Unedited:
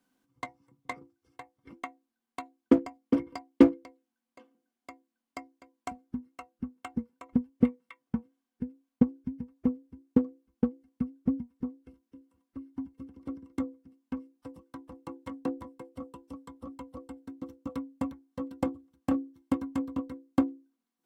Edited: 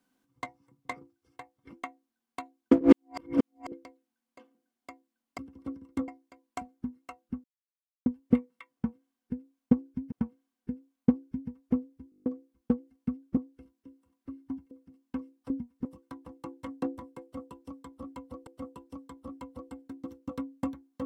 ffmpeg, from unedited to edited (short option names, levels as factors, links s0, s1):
-filter_complex "[0:a]asplit=21[s0][s1][s2][s3][s4][s5][s6][s7][s8][s9][s10][s11][s12][s13][s14][s15][s16][s17][s18][s19][s20];[s0]atrim=end=2.812[s21];[s1]atrim=start=2.808:end=3.722,asetpts=PTS-STARTPTS,areverse[s22];[s2]atrim=start=3.718:end=5.382[s23];[s3]atrim=start=12.988:end=13.692[s24];[s4]atrim=start=5.378:end=6.74,asetpts=PTS-STARTPTS,afade=t=out:st=1.358:d=0.004:c=hsin[s25];[s5]atrim=start=6.74:end=7.36,asetpts=PTS-STARTPTS,volume=0[s26];[s6]atrim=start=7.36:end=9.422,asetpts=PTS-STARTPTS,afade=t=in:d=0.004:c=hsin[s27];[s7]atrim=start=8.048:end=10.052[s28];[s8]atrim=start=10.028:end=10.052[s29];[s9]atrim=start=10.028:end=10.052[s30];[s10]atrim=start=10.028:end=10.052[s31];[s11]atrim=start=10.028:end=10.052[s32];[s12]atrim=start=10.028:end=10.052[s33];[s13]atrim=start=10.028:end=10.052[s34];[s14]atrim=start=10.028:end=10.052[s35];[s15]atrim=start=10.188:end=11.302[s36];[s16]atrim=start=11.648:end=12.992[s37];[s17]atrim=start=13.688:end=14.482[s38];[s18]atrim=start=11.298:end=11.652[s39];[s19]atrim=start=14.478:end=17.102[s40];[s20]atrim=start=15.848[s41];[s21][s22]acrossfade=d=0.004:c1=hsin:c2=hsin[s42];[s42][s23]acrossfade=d=0.004:c1=hsin:c2=hsin[s43];[s43][s24]acrossfade=d=0.004:c1=hsin:c2=hsin[s44];[s25][s26][s27]concat=n=3:v=0:a=1[s45];[s44][s45]acrossfade=d=0.004:c1=hsin:c2=hsin[s46];[s46][s28]acrossfade=d=0.004:c1=hsin:c2=hsin[s47];[s47][s29]acrossfade=d=0.004:c1=hsin:c2=hsin[s48];[s48][s30]acrossfade=d=0.004:c1=hsin:c2=hsin[s49];[s49][s31]acrossfade=d=0.004:c1=hsin:c2=hsin[s50];[s50][s32]acrossfade=d=0.004:c1=hsin:c2=hsin[s51];[s51][s33]acrossfade=d=0.004:c1=hsin:c2=hsin[s52];[s52][s34]acrossfade=d=0.004:c1=hsin:c2=hsin[s53];[s53][s35]acrossfade=d=0.004:c1=hsin:c2=hsin[s54];[s54][s36]acrossfade=d=0.004:c1=hsin:c2=hsin[s55];[s55][s37]acrossfade=d=0.004:c1=hsin:c2=hsin[s56];[s56][s38]acrossfade=d=0.004:c1=hsin:c2=hsin[s57];[s57][s39]acrossfade=d=0.004:c1=hsin:c2=hsin[s58];[s58][s40]acrossfade=d=0.004:c1=hsin:c2=hsin[s59];[s59][s41]acrossfade=d=0.004:c1=hsin:c2=hsin"